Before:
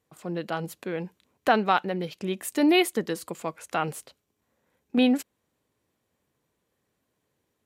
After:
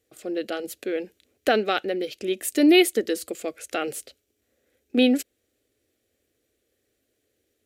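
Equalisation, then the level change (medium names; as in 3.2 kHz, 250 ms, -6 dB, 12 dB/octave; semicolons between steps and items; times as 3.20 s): static phaser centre 400 Hz, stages 4; +5.5 dB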